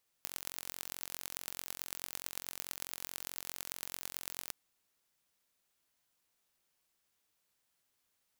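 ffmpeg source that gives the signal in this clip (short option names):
-f lavfi -i "aevalsrc='0.299*eq(mod(n,987),0)*(0.5+0.5*eq(mod(n,4935),0))':d=4.26:s=44100"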